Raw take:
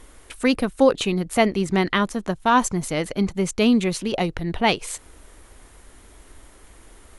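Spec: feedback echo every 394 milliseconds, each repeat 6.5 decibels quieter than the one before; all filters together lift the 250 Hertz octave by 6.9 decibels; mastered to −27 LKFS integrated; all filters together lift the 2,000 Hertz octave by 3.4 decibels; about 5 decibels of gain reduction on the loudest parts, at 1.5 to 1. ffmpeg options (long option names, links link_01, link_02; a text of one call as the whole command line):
ffmpeg -i in.wav -af "equalizer=frequency=250:width_type=o:gain=8,equalizer=frequency=2000:width_type=o:gain=4,acompressor=threshold=-20dB:ratio=1.5,aecho=1:1:394|788|1182|1576|1970|2364:0.473|0.222|0.105|0.0491|0.0231|0.0109,volume=-7dB" out.wav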